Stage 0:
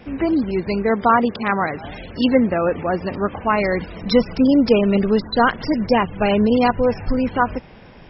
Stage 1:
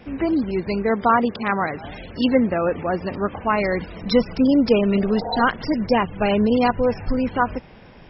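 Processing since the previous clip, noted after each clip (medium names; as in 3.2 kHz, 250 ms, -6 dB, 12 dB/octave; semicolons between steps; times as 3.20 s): spectral replace 4.95–5.39 s, 440–940 Hz both; trim -2 dB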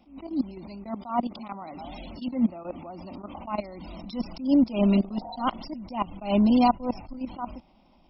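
level held to a coarse grid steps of 20 dB; static phaser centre 450 Hz, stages 6; attacks held to a fixed rise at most 150 dB/s; trim +3.5 dB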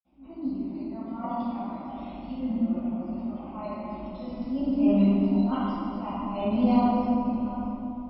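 reverberation RT60 3.0 s, pre-delay 47 ms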